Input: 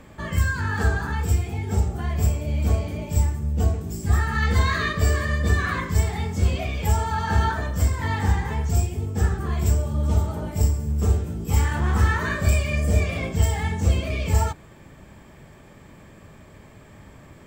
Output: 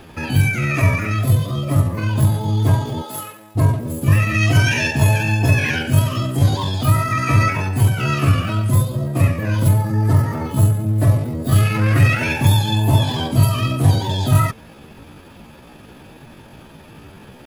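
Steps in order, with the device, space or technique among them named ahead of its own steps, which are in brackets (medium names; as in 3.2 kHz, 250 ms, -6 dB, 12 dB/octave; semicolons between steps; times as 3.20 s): chipmunk voice (pitch shift +6.5 st); 3.01–3.55 s: high-pass 420 Hz -> 990 Hz 12 dB/octave; trim +5.5 dB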